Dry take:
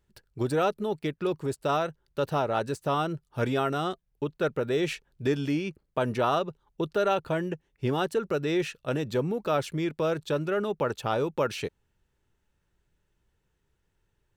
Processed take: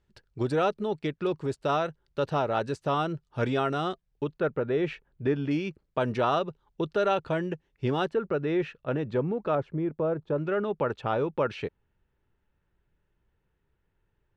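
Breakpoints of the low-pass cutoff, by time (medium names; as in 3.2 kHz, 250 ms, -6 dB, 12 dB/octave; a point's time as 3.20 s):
5.5 kHz
from 4.40 s 2.1 kHz
from 5.51 s 5.3 kHz
from 8.09 s 2.1 kHz
from 9.55 s 1 kHz
from 10.38 s 2.6 kHz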